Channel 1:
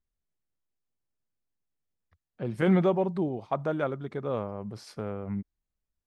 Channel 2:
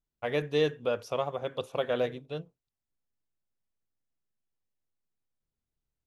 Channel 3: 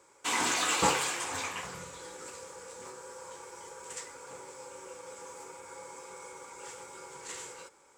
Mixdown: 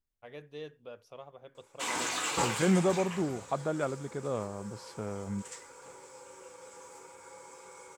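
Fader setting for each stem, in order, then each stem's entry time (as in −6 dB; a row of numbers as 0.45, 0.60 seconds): −3.0, −17.0, −4.0 decibels; 0.00, 0.00, 1.55 seconds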